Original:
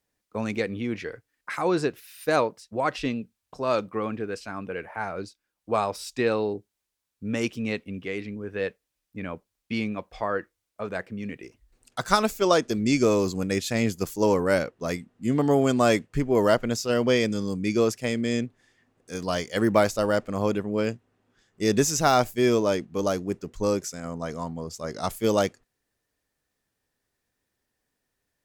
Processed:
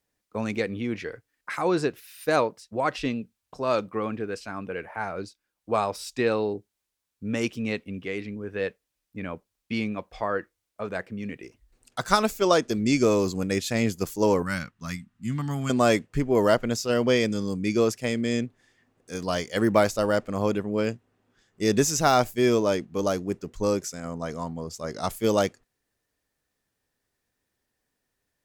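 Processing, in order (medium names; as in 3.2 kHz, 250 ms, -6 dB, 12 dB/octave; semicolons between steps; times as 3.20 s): 14.42–15.70 s: FFT filter 200 Hz 0 dB, 460 Hz -24 dB, 1.2 kHz -2 dB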